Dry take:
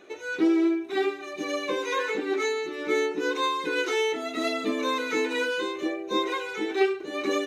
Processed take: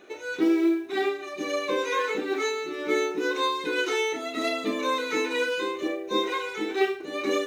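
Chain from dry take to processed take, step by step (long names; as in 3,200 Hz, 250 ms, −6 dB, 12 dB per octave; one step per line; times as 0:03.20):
log-companded quantiser 8 bits
flutter between parallel walls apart 5.6 metres, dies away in 0.24 s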